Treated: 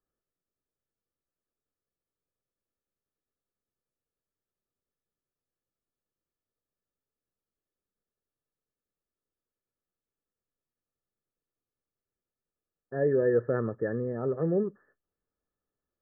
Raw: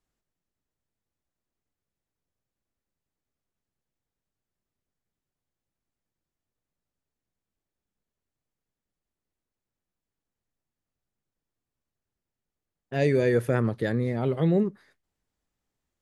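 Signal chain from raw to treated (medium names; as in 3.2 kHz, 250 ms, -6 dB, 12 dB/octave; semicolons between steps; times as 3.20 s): rippled Chebyshev low-pass 1.8 kHz, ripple 9 dB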